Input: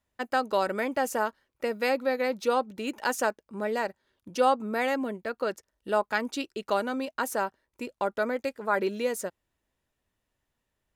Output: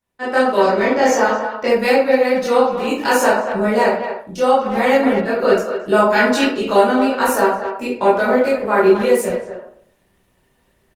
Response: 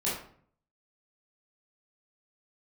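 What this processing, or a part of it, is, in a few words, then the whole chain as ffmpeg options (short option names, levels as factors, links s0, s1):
speakerphone in a meeting room: -filter_complex "[0:a]asettb=1/sr,asplit=3[s0][s1][s2];[s0]atrim=end=0.614[s3];[s1]atrim=start=0.61:end=1.68,asetpts=PTS-STARTPTS,afade=t=in:d=0.004:c=qsin,afade=t=out:st=1.066:d=0.004:c=qsin,highshelf=f=7700:t=q:w=3:g=-9[s4];[s2]atrim=start=1.676[s5];[s3][s4]acrossfade=d=0.004:c1=hsin:c2=qsin[s6];[s6][s5]acrossfade=d=0.004:c1=qsin:c2=hsin[s7];[1:a]atrim=start_sample=2205[s8];[s7][s8]afir=irnorm=-1:irlink=0,asplit=2[s9][s10];[s10]adelay=230,highpass=300,lowpass=3400,asoftclip=type=hard:threshold=0.251,volume=0.355[s11];[s9][s11]amix=inputs=2:normalize=0,dynaudnorm=f=190:g=3:m=5.96,volume=0.841" -ar 48000 -c:a libopus -b:a 24k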